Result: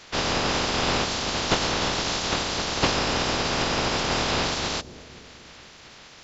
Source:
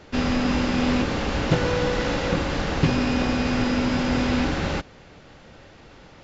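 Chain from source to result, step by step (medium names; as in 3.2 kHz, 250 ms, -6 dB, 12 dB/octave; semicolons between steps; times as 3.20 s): spectral peaks clipped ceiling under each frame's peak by 25 dB; dynamic bell 2 kHz, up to -7 dB, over -38 dBFS, Q 0.98; on a send: bucket-brigade echo 250 ms, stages 1024, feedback 62%, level -15 dB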